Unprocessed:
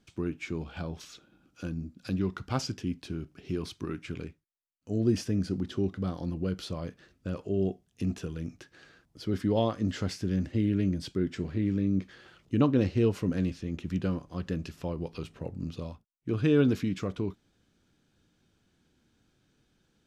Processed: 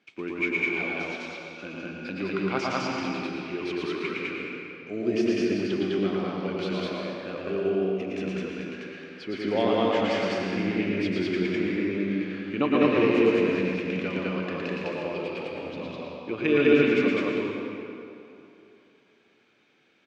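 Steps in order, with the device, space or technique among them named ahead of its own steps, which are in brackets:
station announcement (band-pass filter 330–3,800 Hz; parametric band 2,300 Hz +11.5 dB 0.43 octaves; loudspeakers that aren't time-aligned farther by 39 metres −3 dB, 70 metres 0 dB; convolution reverb RT60 2.8 s, pre-delay 95 ms, DRR 0 dB)
level +2 dB

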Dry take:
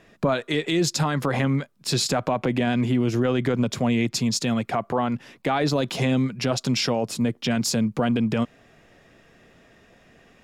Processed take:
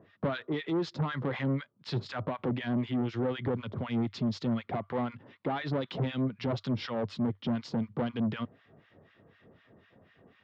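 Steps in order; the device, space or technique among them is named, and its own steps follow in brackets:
guitar amplifier with harmonic tremolo (two-band tremolo in antiphase 4 Hz, depth 100%, crossover 1,100 Hz; soft clipping −25 dBFS, distortion −9 dB; loudspeaker in its box 87–3,500 Hz, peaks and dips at 98 Hz +9 dB, 720 Hz −4 dB, 1,600 Hz −3 dB, 2,500 Hz −8 dB)

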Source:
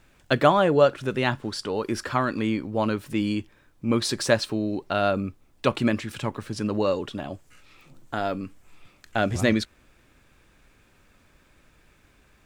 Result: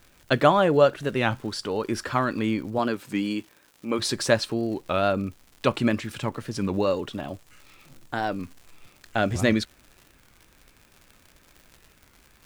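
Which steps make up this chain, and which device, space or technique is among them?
0:02.78–0:03.98: high-pass filter 150 Hz → 330 Hz 12 dB per octave
warped LP (wow of a warped record 33 1/3 rpm, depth 160 cents; surface crackle 130 per second −39 dBFS; white noise bed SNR 42 dB)

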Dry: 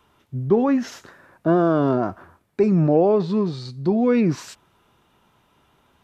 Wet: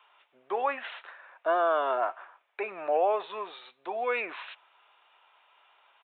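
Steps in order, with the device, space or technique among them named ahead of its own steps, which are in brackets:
musical greeting card (downsampling to 8,000 Hz; high-pass filter 650 Hz 24 dB per octave; parametric band 2,500 Hz +5 dB 0.48 octaves)

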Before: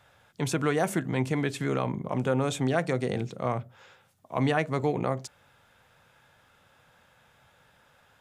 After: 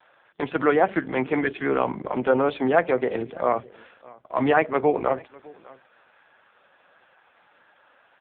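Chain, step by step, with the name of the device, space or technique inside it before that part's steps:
satellite phone (band-pass filter 320–3,400 Hz; single-tap delay 605 ms −23.5 dB; level +9 dB; AMR narrowband 4.75 kbit/s 8,000 Hz)

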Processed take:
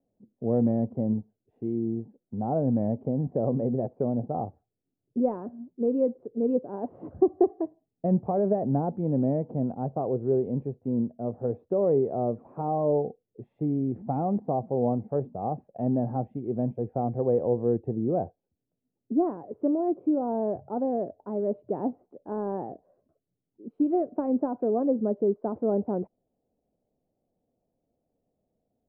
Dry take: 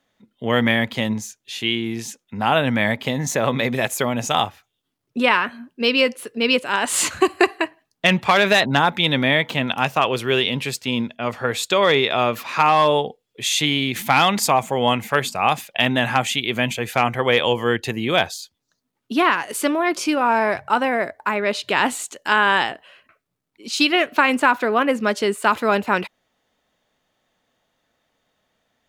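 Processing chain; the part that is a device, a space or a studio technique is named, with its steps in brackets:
under water (low-pass filter 530 Hz 24 dB per octave; parametric band 740 Hz +6.5 dB 0.29 octaves)
level −3 dB

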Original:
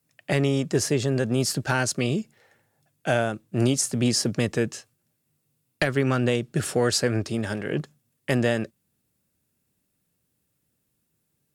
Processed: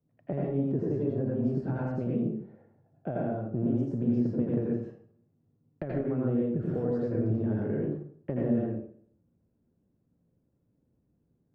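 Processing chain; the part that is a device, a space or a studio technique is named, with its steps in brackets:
television next door (downward compressor 6 to 1, threshold −30 dBFS, peak gain reduction 13 dB; low-pass filter 550 Hz 12 dB per octave; convolution reverb RT60 0.55 s, pre-delay 78 ms, DRR −4 dB)
level +1.5 dB

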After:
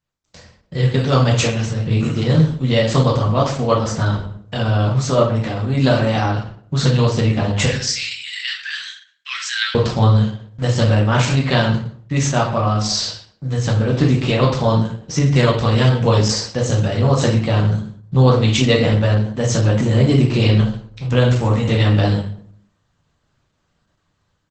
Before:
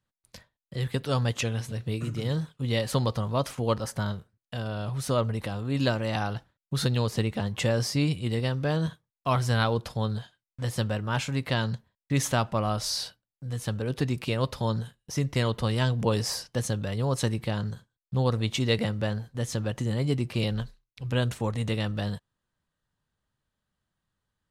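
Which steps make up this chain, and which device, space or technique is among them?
0:07.66–0:09.75: elliptic high-pass filter 1,700 Hz, stop band 60 dB
slap from a distant wall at 21 metres, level −19 dB
speakerphone in a meeting room (convolution reverb RT60 0.55 s, pre-delay 9 ms, DRR −2.5 dB; automatic gain control gain up to 14 dB; level −1 dB; Opus 12 kbit/s 48,000 Hz)

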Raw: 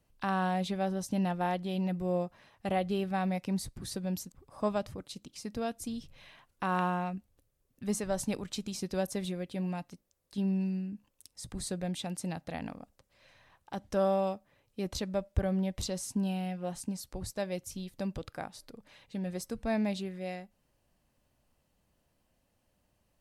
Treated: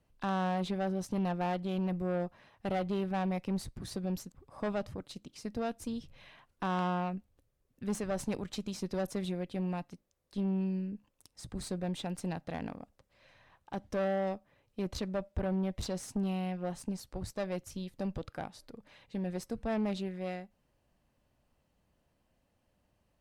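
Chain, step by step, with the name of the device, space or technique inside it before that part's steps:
tube preamp driven hard (tube saturation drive 30 dB, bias 0.5; high-shelf EQ 5,000 Hz −8.5 dB)
level +2.5 dB

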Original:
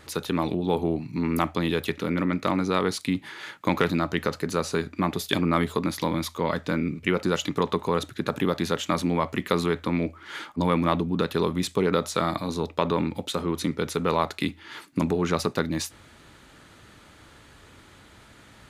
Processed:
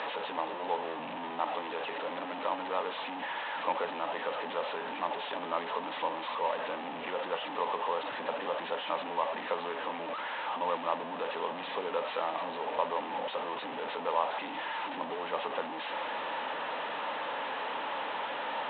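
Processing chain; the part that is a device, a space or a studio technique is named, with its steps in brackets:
digital answering machine (band-pass filter 300–3,200 Hz; linear delta modulator 16 kbit/s, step −21 dBFS; loudspeaker in its box 350–4,400 Hz, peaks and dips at 360 Hz −10 dB, 540 Hz +5 dB, 900 Hz +9 dB, 1,400 Hz −5 dB, 2,200 Hz −6 dB, 3,900 Hz +9 dB)
level −8.5 dB

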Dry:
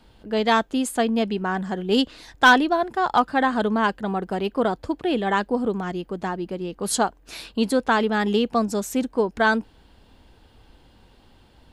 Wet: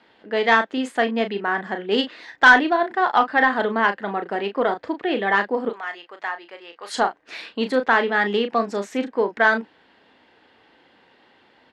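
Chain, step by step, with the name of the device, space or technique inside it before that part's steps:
0:05.69–0:06.94: high-pass filter 890 Hz 12 dB per octave
intercom (band-pass filter 310–3,800 Hz; parametric band 1,900 Hz +9 dB 0.48 octaves; soft clipping −4.5 dBFS, distortion −19 dB; double-tracking delay 35 ms −8.5 dB)
level +1.5 dB

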